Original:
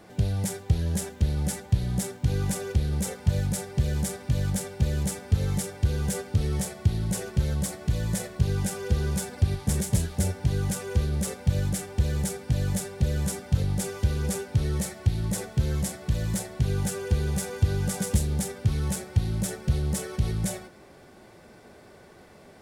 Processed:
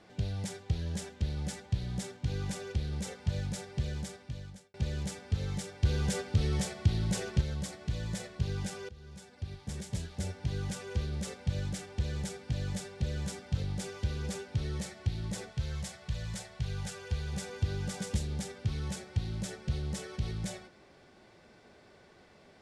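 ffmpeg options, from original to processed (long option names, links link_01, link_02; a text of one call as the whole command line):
ffmpeg -i in.wav -filter_complex "[0:a]asettb=1/sr,asplit=3[link_01][link_02][link_03];[link_01]atrim=end=5.834[link_04];[link_02]atrim=start=5.83:end=7.41,asetpts=PTS-STARTPTS,afade=type=in:duration=0.004:curve=qsin,afade=type=out:start_time=1.576:duration=0.004:curve=qsin,acontrast=35[link_05];[link_03]atrim=start=7.406[link_06];[link_04][link_05]acrossfade=duration=0.004:curve1=hsin:curve2=qsin[link_07];[link_07][link_06]acrossfade=duration=0.004:curve1=qsin:curve2=hsin,asettb=1/sr,asplit=3[link_08][link_09][link_10];[link_08]atrim=end=15.514[link_11];[link_09]atrim=start=15.51:end=17.33,asetpts=PTS-STARTPTS,afade=type=in:duration=0.004:curve=qsin,afade=type=out:start_time=1.816:duration=0.004:curve=qsin,equalizer=frequency=290:width=1.5:gain=-13.5[link_12];[link_10]atrim=start=17.326[link_13];[link_11][link_12]acrossfade=duration=0.004:curve1=hsin:curve2=qsin[link_14];[link_14][link_13]acrossfade=duration=0.004:curve1=qsin:curve2=hsin,asplit=3[link_15][link_16][link_17];[link_15]atrim=end=4.74,asetpts=PTS-STARTPTS,afade=type=out:start_time=3.82:duration=0.92[link_18];[link_16]atrim=start=4.74:end=8.89,asetpts=PTS-STARTPTS,afade=type=in:duration=0.004:curve=hsin,afade=type=out:start_time=4.146:duration=0.004:curve=hsin:silence=0.0944061[link_19];[link_17]atrim=start=8.89,asetpts=PTS-STARTPTS,afade=type=in:duration=1.69:silence=0.0944061[link_20];[link_18][link_19][link_20]concat=n=3:v=0:a=1,lowpass=4400,highshelf=frequency=2900:gain=10.5,volume=-8.5dB" out.wav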